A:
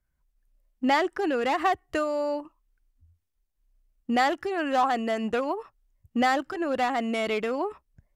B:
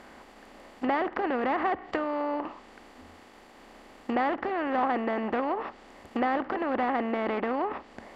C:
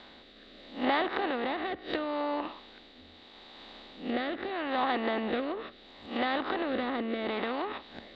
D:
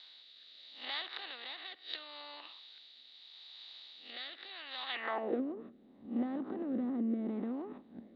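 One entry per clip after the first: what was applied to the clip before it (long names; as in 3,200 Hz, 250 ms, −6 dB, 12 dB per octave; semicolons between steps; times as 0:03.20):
compressor on every frequency bin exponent 0.4; treble cut that deepens with the level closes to 1,900 Hz, closed at −18.5 dBFS; level −7 dB
peak hold with a rise ahead of every peak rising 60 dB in 0.35 s; low-pass with resonance 3,800 Hz, resonance Q 13; rotating-speaker cabinet horn 0.75 Hz; level −2 dB
band-pass filter sweep 4,200 Hz → 220 Hz, 0:04.86–0:05.44; level +2.5 dB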